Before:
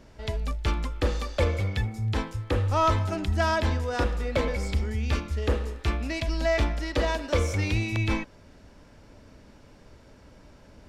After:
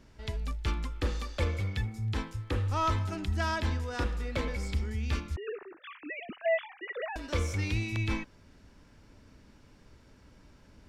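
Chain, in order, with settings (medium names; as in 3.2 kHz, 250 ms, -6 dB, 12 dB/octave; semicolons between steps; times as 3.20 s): 5.36–7.16 s: formants replaced by sine waves; peaking EQ 610 Hz -6.5 dB 0.94 oct; trim -4.5 dB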